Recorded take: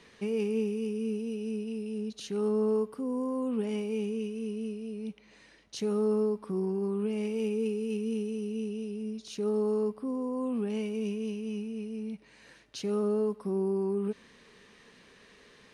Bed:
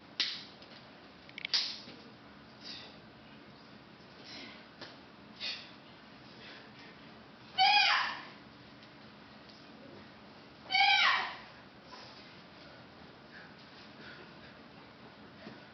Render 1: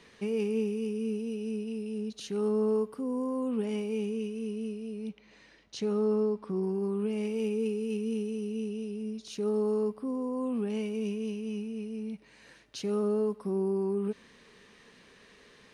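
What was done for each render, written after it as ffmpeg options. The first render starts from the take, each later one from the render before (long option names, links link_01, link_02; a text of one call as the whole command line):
ffmpeg -i in.wav -filter_complex "[0:a]asettb=1/sr,asplit=3[link_01][link_02][link_03];[link_01]atrim=end=5.094[link_04];[link_02]atrim=start=5.09:end=6.63,asetpts=PTS-STARTPTS,afade=type=in:duration=0.004:curve=qsin,afade=type=out:start_time=1.536:duration=0.004:curve=qsin,lowpass=6500[link_05];[link_03]atrim=start=6.626[link_06];[link_04][link_05]acrossfade=duration=0.004:curve1=hsin:curve2=qsin[link_07];[link_07][link_06]acrossfade=duration=0.004:curve1=qsin:curve2=hsin" out.wav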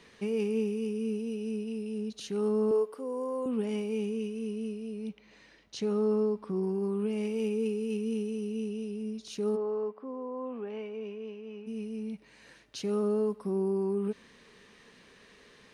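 ffmpeg -i in.wav -filter_complex "[0:a]asettb=1/sr,asplit=3[link_01][link_02][link_03];[link_01]atrim=end=2.714[link_04];[link_02]atrim=start=2.71:end=3.46,asetpts=PTS-STARTPTS,afade=type=in:duration=0.004:curve=qsin,afade=type=out:start_time=0.746:duration=0.004:curve=qsin,lowshelf=frequency=280:width_type=q:width=1.5:gain=-12.5[link_05];[link_03]atrim=start=3.456[link_06];[link_04][link_05]acrossfade=duration=0.004:curve1=hsin:curve2=qsin[link_07];[link_07][link_06]acrossfade=duration=0.004:curve1=qsin:curve2=hsin,asplit=3[link_08][link_09][link_10];[link_08]afade=type=out:start_time=9.55:duration=0.02[link_11];[link_09]highpass=410,lowpass=2100,afade=type=in:start_time=9.55:duration=0.02,afade=type=out:start_time=11.66:duration=0.02[link_12];[link_10]afade=type=in:start_time=11.66:duration=0.02[link_13];[link_11][link_12][link_13]amix=inputs=3:normalize=0" out.wav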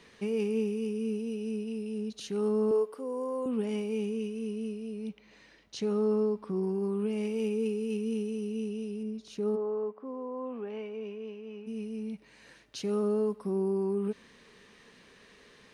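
ffmpeg -i in.wav -filter_complex "[0:a]asettb=1/sr,asplit=3[link_01][link_02][link_03];[link_01]atrim=end=9.034[link_04];[link_02]atrim=start=9.03:end=10.05,asetpts=PTS-STARTPTS,afade=type=in:duration=0.004:curve=qsin,afade=type=out:start_time=1.016:duration=0.004:curve=qsin,highshelf=frequency=2500:gain=-8[link_05];[link_03]atrim=start=10.046[link_06];[link_04][link_05]acrossfade=duration=0.004:curve1=hsin:curve2=qsin[link_07];[link_07][link_06]acrossfade=duration=0.004:curve1=qsin:curve2=hsin" out.wav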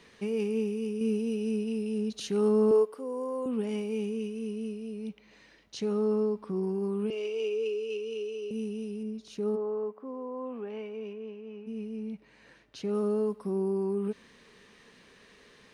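ffmpeg -i in.wav -filter_complex "[0:a]asettb=1/sr,asplit=3[link_01][link_02][link_03];[link_01]atrim=end=7.104[link_04];[link_02]atrim=start=7.1:end=8.51,asetpts=PTS-STARTPTS,afade=type=in:duration=0.004:curve=qsin,afade=type=out:start_time=1.406:duration=0.004:curve=qsin,highpass=frequency=370:width=0.5412,highpass=frequency=370:width=1.3066,equalizer=frequency=400:width_type=q:width=4:gain=5,equalizer=frequency=820:width_type=q:width=4:gain=-9,equalizer=frequency=1900:width_type=q:width=4:gain=-8,equalizer=frequency=2800:width_type=q:width=4:gain=7,lowpass=frequency=7000:width=0.5412,lowpass=frequency=7000:width=1.3066[link_05];[link_03]atrim=start=8.506[link_06];[link_04][link_05]acrossfade=duration=0.004:curve1=hsin:curve2=qsin[link_07];[link_07][link_06]acrossfade=duration=0.004:curve1=qsin:curve2=hsin,asettb=1/sr,asplit=3[link_08][link_09][link_10];[link_08]atrim=end=11.134[link_11];[link_09]atrim=start=11.13:end=12.95,asetpts=PTS-STARTPTS,afade=type=in:duration=0.004:curve=qsin,afade=type=out:start_time=1.816:duration=0.004:curve=qsin,highshelf=frequency=4300:gain=-11[link_12];[link_10]atrim=start=12.946[link_13];[link_11][link_12]acrossfade=duration=0.004:curve1=hsin:curve2=qsin[link_14];[link_14][link_13]acrossfade=duration=0.004:curve1=qsin:curve2=hsin,asplit=3[link_15][link_16][link_17];[link_15]atrim=end=1.012[link_18];[link_16]atrim=start=1.008:end=2.852,asetpts=PTS-STARTPTS,volume=4dB[link_19];[link_17]atrim=start=2.848[link_20];[link_18][link_19]acrossfade=duration=0.004:curve1=hsin:curve2=hsin[link_21];[link_21][link_20]acrossfade=duration=0.004:curve1=hsin:curve2=hsin" out.wav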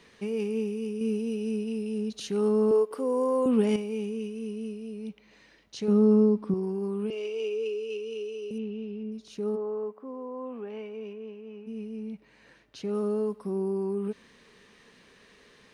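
ffmpeg -i in.wav -filter_complex "[0:a]asettb=1/sr,asplit=3[link_01][link_02][link_03];[link_01]atrim=end=5.884[link_04];[link_02]atrim=start=5.88:end=6.54,asetpts=PTS-STARTPTS,afade=type=in:duration=0.004:curve=qsin,afade=type=out:start_time=0.656:duration=0.004:curve=qsin,equalizer=frequency=230:width=0.97:gain=11[link_05];[link_03]atrim=start=6.536[link_06];[link_04][link_05]acrossfade=duration=0.004:curve1=hsin:curve2=qsin[link_07];[link_07][link_06]acrossfade=duration=0.004:curve1=qsin:curve2=hsin,asettb=1/sr,asplit=3[link_08][link_09][link_10];[link_08]atrim=end=8.584[link_11];[link_09]atrim=start=8.58:end=9.12,asetpts=PTS-STARTPTS,afade=type=in:duration=0.004:curve=qsin,afade=type=out:start_time=0.536:duration=0.004:curve=qsin,lowpass=frequency=3600:width=0.5412,lowpass=frequency=3600:width=1.3066[link_12];[link_10]atrim=start=9.116[link_13];[link_11][link_12]acrossfade=duration=0.004:curve1=hsin:curve2=qsin[link_14];[link_14][link_13]acrossfade=duration=0.004:curve1=qsin:curve2=hsin,asplit=3[link_15][link_16][link_17];[link_15]atrim=end=2.912[link_18];[link_16]atrim=start=2.908:end=3.762,asetpts=PTS-STARTPTS,volume=8dB[link_19];[link_17]atrim=start=3.758[link_20];[link_18][link_19]acrossfade=duration=0.004:curve1=hsin:curve2=hsin[link_21];[link_21][link_20]acrossfade=duration=0.004:curve1=hsin:curve2=hsin" out.wav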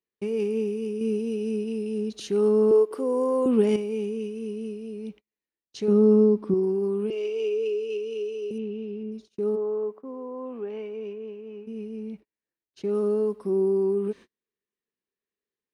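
ffmpeg -i in.wav -af "agate=range=-40dB:threshold=-45dB:ratio=16:detection=peak,equalizer=frequency=360:width_type=o:width=0.5:gain=9" out.wav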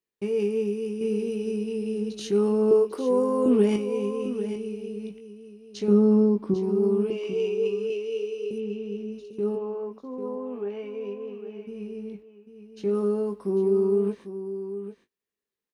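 ffmpeg -i in.wav -filter_complex "[0:a]asplit=2[link_01][link_02];[link_02]adelay=20,volume=-7dB[link_03];[link_01][link_03]amix=inputs=2:normalize=0,asplit=2[link_04][link_05];[link_05]aecho=0:1:797:0.282[link_06];[link_04][link_06]amix=inputs=2:normalize=0" out.wav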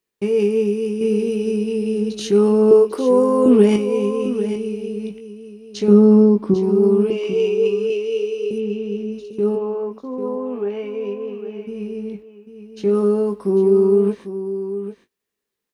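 ffmpeg -i in.wav -af "volume=8dB" out.wav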